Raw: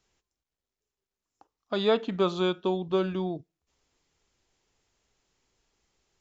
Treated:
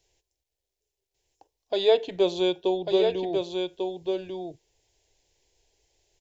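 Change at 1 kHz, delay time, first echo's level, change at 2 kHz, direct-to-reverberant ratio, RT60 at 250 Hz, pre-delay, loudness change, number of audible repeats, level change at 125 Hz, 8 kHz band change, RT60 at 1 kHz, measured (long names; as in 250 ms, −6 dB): 0.0 dB, 1,145 ms, −5.0 dB, −1.0 dB, no reverb audible, no reverb audible, no reverb audible, +2.0 dB, 1, −7.5 dB, can't be measured, no reverb audible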